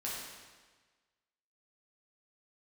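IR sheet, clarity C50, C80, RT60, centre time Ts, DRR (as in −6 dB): −0.5 dB, 1.5 dB, 1.4 s, 89 ms, −6.5 dB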